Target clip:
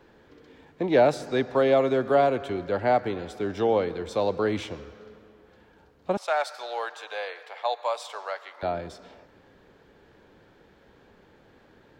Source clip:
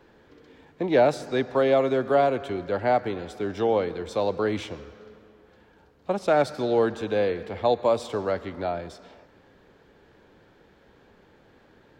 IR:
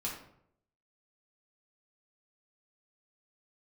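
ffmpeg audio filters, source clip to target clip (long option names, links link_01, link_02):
-filter_complex "[0:a]asettb=1/sr,asplit=3[link_01][link_02][link_03];[link_01]atrim=end=6.174[link_04];[link_02]atrim=start=6.17:end=8.63,asetpts=PTS-STARTPTS,afade=type=in:duration=0.004:curve=qsin,afade=type=out:start_time=2.456:duration=0.004:curve=qsin,highpass=frequency=710:width=0.5412,highpass=frequency=710:width=1.3066[link_05];[link_03]atrim=start=8.626[link_06];[link_04][link_05]acrossfade=duration=0.004:curve1=hsin:curve2=qsin[link_07];[link_07][link_06]acrossfade=duration=0.004:curve1=qsin:curve2=hsin"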